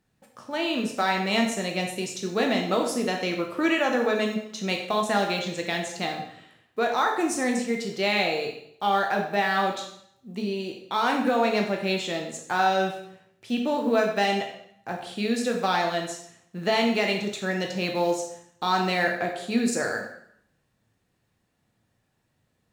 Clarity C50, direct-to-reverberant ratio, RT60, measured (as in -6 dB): 6.0 dB, 1.5 dB, 0.65 s